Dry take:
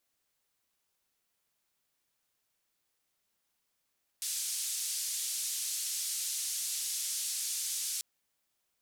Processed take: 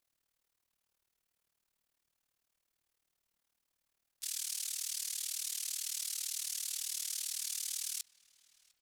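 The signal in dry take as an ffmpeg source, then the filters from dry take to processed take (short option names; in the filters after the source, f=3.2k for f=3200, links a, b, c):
-f lavfi -i "anoisesrc=c=white:d=3.79:r=44100:seed=1,highpass=f=4900,lowpass=f=9900,volume=-24.2dB"
-filter_complex "[0:a]lowshelf=f=72:g=8,tremolo=f=38:d=0.889,asplit=2[a][b];[b]adelay=703,lowpass=f=2.1k:p=1,volume=-19dB,asplit=2[c][d];[d]adelay=703,lowpass=f=2.1k:p=1,volume=0.46,asplit=2[e][f];[f]adelay=703,lowpass=f=2.1k:p=1,volume=0.46,asplit=2[g][h];[h]adelay=703,lowpass=f=2.1k:p=1,volume=0.46[i];[a][c][e][g][i]amix=inputs=5:normalize=0"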